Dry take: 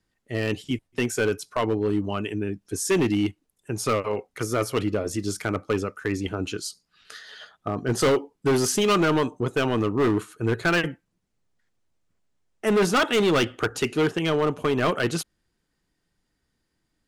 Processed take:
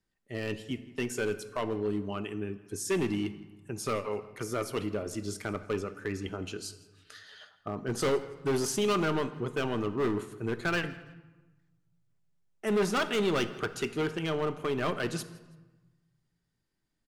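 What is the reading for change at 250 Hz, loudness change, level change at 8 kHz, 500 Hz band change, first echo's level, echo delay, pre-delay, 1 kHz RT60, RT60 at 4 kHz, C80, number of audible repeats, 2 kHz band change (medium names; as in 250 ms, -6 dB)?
-8.0 dB, -7.5 dB, -8.0 dB, -7.0 dB, -22.0 dB, 164 ms, 5 ms, 1.2 s, 0.80 s, 15.0 dB, 2, -7.5 dB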